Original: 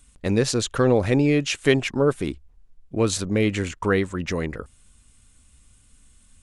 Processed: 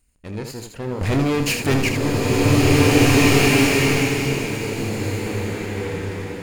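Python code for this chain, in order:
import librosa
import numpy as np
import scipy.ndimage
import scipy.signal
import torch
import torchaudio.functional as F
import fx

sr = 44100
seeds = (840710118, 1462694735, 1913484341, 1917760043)

y = fx.lower_of_two(x, sr, delay_ms=0.42)
y = fx.leveller(y, sr, passes=5, at=(1.01, 1.93))
y = fx.room_early_taps(y, sr, ms=(29, 79), db=(-9.5, -7.0))
y = fx.rev_bloom(y, sr, seeds[0], attack_ms=2010, drr_db=-8.0)
y = F.gain(torch.from_numpy(y), -10.5).numpy()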